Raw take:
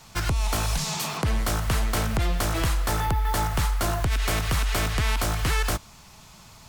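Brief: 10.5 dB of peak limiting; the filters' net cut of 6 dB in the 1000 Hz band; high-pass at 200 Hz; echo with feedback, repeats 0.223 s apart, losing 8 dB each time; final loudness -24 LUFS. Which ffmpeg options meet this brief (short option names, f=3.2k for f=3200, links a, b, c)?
-af "highpass=200,equalizer=f=1k:t=o:g=-8,alimiter=level_in=1dB:limit=-24dB:level=0:latency=1,volume=-1dB,aecho=1:1:223|446|669|892|1115:0.398|0.159|0.0637|0.0255|0.0102,volume=9dB"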